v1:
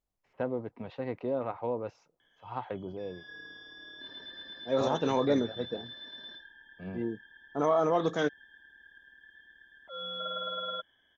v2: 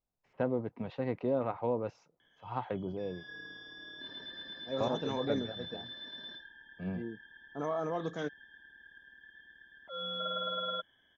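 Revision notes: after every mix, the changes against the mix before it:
second voice −9.0 dB
master: add parametric band 160 Hz +4.5 dB 1.3 octaves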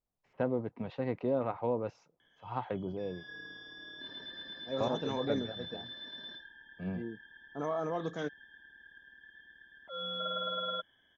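nothing changed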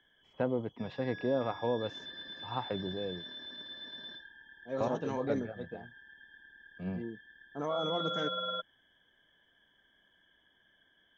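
first voice: remove high-frequency loss of the air 60 metres
background: entry −2.20 s

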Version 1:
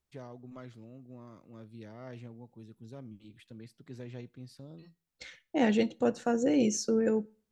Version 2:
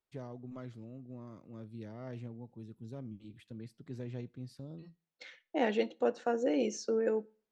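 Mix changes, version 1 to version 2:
second voice: add band-pass filter 430–4,700 Hz
master: add tilt shelving filter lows +3 dB, about 640 Hz

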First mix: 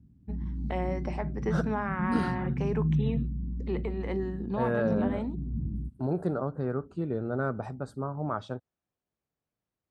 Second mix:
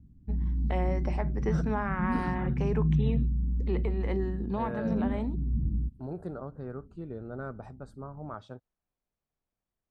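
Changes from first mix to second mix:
second voice −8.5 dB
master: remove high-pass filter 78 Hz 12 dB per octave

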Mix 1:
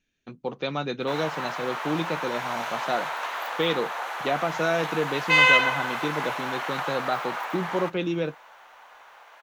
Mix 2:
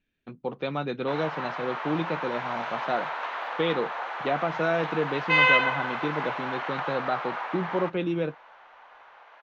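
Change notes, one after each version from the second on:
master: add high-frequency loss of the air 230 metres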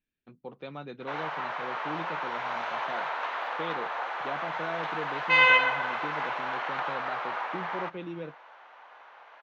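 speech −10.5 dB

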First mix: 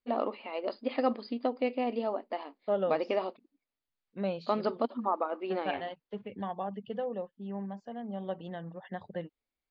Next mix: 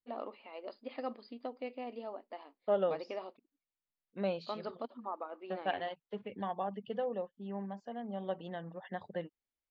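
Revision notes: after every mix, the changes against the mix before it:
first voice −10.0 dB
master: add low-shelf EQ 180 Hz −7.5 dB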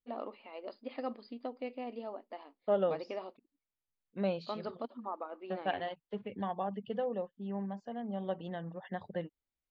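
master: add low-shelf EQ 180 Hz +7.5 dB

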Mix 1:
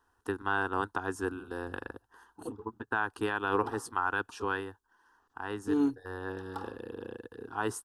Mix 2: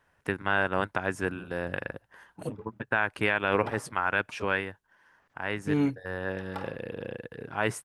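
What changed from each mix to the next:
master: remove phaser with its sweep stopped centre 590 Hz, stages 6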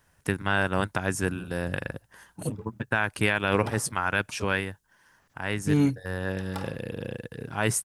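master: add bass and treble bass +8 dB, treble +14 dB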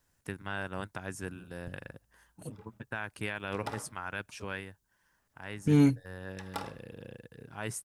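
first voice −12.0 dB

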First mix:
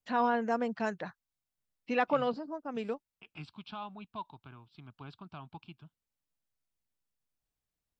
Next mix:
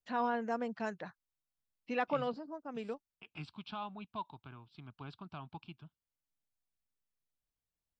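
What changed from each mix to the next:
first voice −5.0 dB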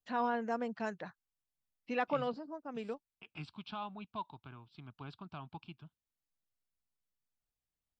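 nothing changed

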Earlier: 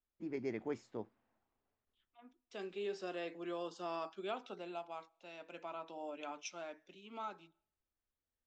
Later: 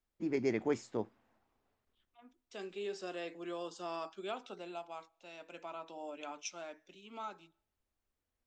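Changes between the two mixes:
first voice +7.0 dB
master: remove high-frequency loss of the air 80 metres

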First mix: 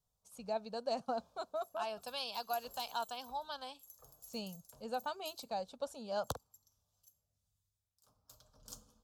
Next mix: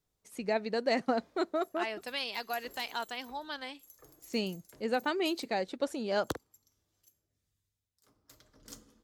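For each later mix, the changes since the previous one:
first voice +4.5 dB
master: remove phaser with its sweep stopped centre 820 Hz, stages 4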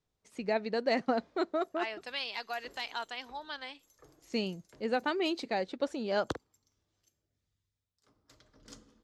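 second voice: add low-shelf EQ 380 Hz −10 dB
master: add low-pass filter 5,700 Hz 12 dB per octave

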